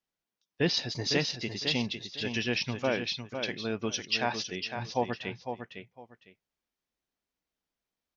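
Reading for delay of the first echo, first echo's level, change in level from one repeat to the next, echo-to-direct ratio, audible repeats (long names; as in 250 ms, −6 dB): 505 ms, −7.5 dB, −13.0 dB, −7.5 dB, 2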